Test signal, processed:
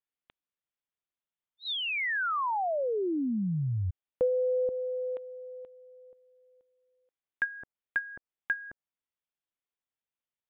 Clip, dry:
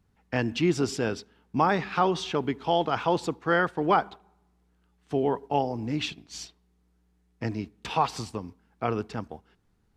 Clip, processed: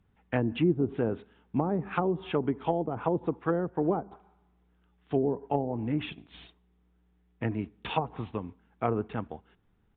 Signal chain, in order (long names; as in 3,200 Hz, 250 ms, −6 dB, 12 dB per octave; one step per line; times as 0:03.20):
downsampling to 8,000 Hz
treble cut that deepens with the level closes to 440 Hz, closed at −21 dBFS